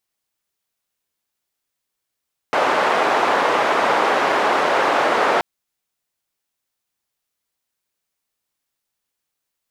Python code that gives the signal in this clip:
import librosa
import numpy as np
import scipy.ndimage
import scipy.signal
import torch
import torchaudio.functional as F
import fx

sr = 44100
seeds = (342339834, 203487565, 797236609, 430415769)

y = fx.band_noise(sr, seeds[0], length_s=2.88, low_hz=490.0, high_hz=1000.0, level_db=-17.5)